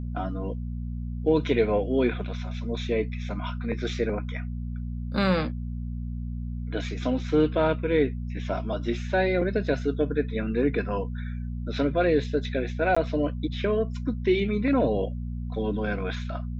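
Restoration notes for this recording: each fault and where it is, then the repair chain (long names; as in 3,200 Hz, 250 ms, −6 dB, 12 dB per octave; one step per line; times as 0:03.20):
mains hum 60 Hz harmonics 4 −32 dBFS
0:12.95–0:12.96: drop-out 15 ms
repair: hum removal 60 Hz, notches 4
repair the gap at 0:12.95, 15 ms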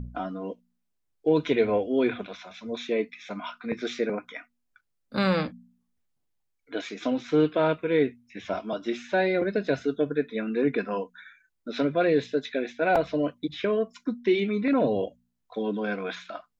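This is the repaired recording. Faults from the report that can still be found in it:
none of them is left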